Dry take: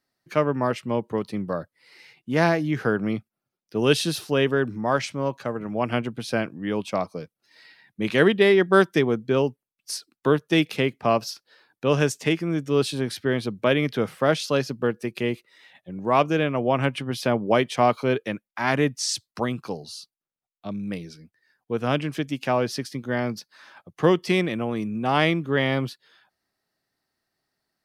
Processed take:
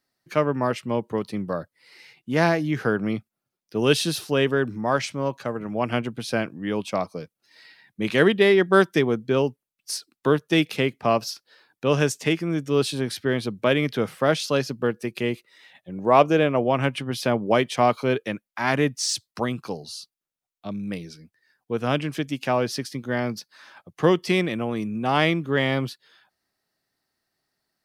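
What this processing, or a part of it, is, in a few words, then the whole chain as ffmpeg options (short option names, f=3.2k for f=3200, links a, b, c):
exciter from parts: -filter_complex "[0:a]asplit=2[a][b];[b]highpass=f=3.8k:p=1,asoftclip=type=tanh:threshold=-29.5dB,volume=-9dB[c];[a][c]amix=inputs=2:normalize=0,asettb=1/sr,asplit=3[d][e][f];[d]atrim=end=15.914[g];[e]atrim=start=15.91:end=16.64,asetpts=PTS-STARTPTS,afade=t=in:d=0.004:c=qsin,afade=t=out:st=0.726:d=0.004:c=qsin,equalizer=f=560:t=o:w=1.6:g=5[h];[f]atrim=start=16.636[i];[g][h]acrossfade=d=0.004:c1=hsin:c2=qsin[j];[j][i]acrossfade=d=0.004:c1=qsin:c2=hsin"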